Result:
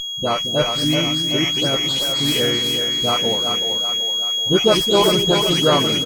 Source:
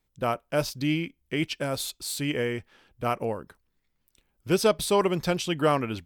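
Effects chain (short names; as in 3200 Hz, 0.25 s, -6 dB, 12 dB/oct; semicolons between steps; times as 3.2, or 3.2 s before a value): spectral delay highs late, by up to 0.218 s; harmoniser -3 st -10 dB; whine 3300 Hz -30 dBFS; split-band echo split 410 Hz, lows 0.223 s, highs 0.38 s, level -5.5 dB; running maximum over 3 samples; gain +6 dB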